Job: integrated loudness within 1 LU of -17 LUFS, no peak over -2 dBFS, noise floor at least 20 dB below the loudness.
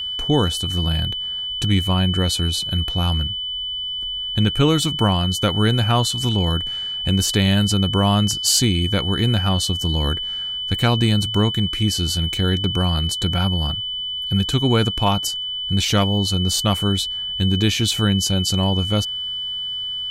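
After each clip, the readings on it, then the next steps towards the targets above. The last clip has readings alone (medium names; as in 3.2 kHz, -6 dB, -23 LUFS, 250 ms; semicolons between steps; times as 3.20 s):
tick rate 23 per s; steady tone 3 kHz; tone level -24 dBFS; loudness -19.5 LUFS; peak level -4.5 dBFS; loudness target -17.0 LUFS
-> de-click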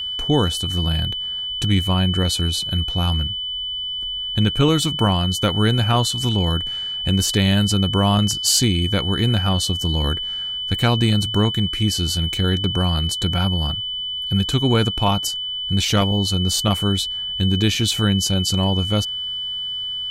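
tick rate 0.60 per s; steady tone 3 kHz; tone level -24 dBFS
-> band-stop 3 kHz, Q 30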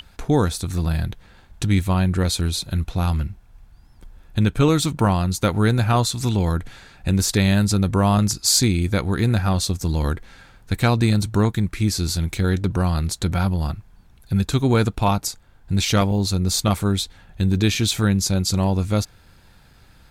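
steady tone not found; loudness -21.0 LUFS; peak level -5.0 dBFS; loudness target -17.0 LUFS
-> trim +4 dB; peak limiter -2 dBFS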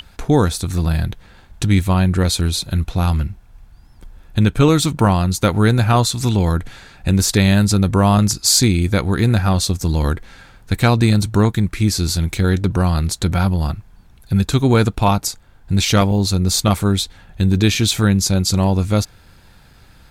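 loudness -17.0 LUFS; peak level -2.0 dBFS; noise floor -47 dBFS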